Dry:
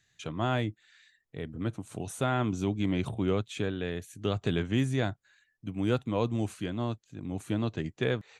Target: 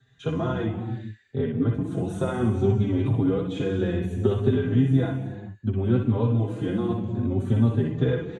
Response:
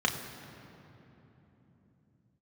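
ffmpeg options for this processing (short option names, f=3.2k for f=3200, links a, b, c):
-filter_complex "[0:a]acompressor=threshold=-33dB:ratio=6,bandreject=f=610:w=12,acrossover=split=590|1300[a][b][c];[a]acontrast=27[d];[d][b][c]amix=inputs=3:normalize=0,equalizer=f=250:w=0.36:g=4.5[e];[1:a]atrim=start_sample=2205,afade=t=out:st=0.27:d=0.01,atrim=end_sample=12348,asetrate=22491,aresample=44100[f];[e][f]afir=irnorm=-1:irlink=0,asplit=2[g][h];[h]adelay=4.6,afreqshift=0.64[i];[g][i]amix=inputs=2:normalize=1,volume=-6.5dB"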